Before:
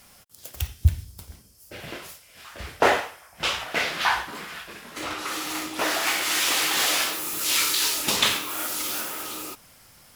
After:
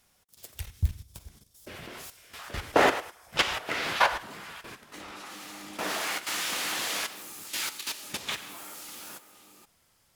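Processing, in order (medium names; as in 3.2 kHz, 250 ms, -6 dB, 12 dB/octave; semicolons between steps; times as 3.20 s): Doppler pass-by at 2.95 s, 10 m/s, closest 11 m; level held to a coarse grid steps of 12 dB; harmony voices -7 st -5 dB; trim +3.5 dB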